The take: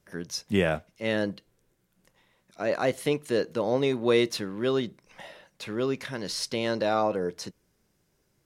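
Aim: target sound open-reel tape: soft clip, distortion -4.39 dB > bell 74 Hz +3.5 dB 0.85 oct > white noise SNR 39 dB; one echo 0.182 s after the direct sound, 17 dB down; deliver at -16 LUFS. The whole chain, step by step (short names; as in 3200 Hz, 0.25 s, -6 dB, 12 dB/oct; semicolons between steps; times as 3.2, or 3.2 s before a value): echo 0.182 s -17 dB; soft clip -32 dBFS; bell 74 Hz +3.5 dB 0.85 oct; white noise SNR 39 dB; gain +20.5 dB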